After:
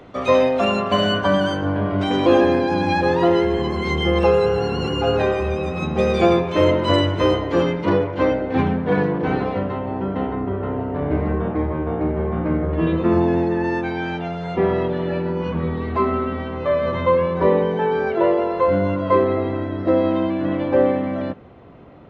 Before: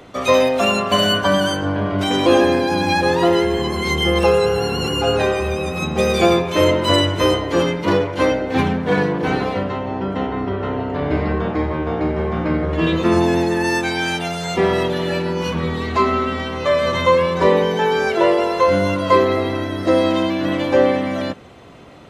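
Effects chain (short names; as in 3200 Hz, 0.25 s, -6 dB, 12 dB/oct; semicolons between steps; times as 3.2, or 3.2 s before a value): tape spacing loss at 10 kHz 20 dB, from 7.88 s at 10 kHz 28 dB, from 10.34 s at 10 kHz 41 dB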